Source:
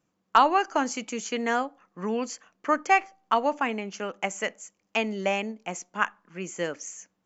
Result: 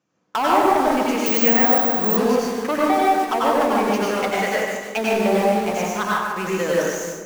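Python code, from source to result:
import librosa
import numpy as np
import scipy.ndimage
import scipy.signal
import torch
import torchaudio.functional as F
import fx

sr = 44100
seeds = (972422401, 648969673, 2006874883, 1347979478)

p1 = scipy.signal.sosfilt(scipy.signal.butter(4, 74.0, 'highpass', fs=sr, output='sos'), x)
p2 = fx.env_lowpass_down(p1, sr, base_hz=730.0, full_db=-20.5)
p3 = scipy.signal.sosfilt(scipy.signal.butter(6, 6800.0, 'lowpass', fs=sr, output='sos'), p2)
p4 = p3 + fx.echo_split(p3, sr, split_hz=480.0, low_ms=327, high_ms=147, feedback_pct=52, wet_db=-10.0, dry=0)
p5 = 10.0 ** (-23.0 / 20.0) * np.tanh(p4 / 10.0 ** (-23.0 / 20.0))
p6 = fx.quant_dither(p5, sr, seeds[0], bits=6, dither='none')
p7 = p5 + (p6 * librosa.db_to_amplitude(-3.0))
p8 = fx.low_shelf(p7, sr, hz=130.0, db=-6.5)
p9 = fx.rev_plate(p8, sr, seeds[1], rt60_s=0.97, hf_ratio=0.6, predelay_ms=80, drr_db=-5.5)
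p10 = fx.resample_bad(p9, sr, factor=2, down='filtered', up='zero_stuff', at=(1.26, 2.17))
y = p10 * librosa.db_to_amplitude(2.0)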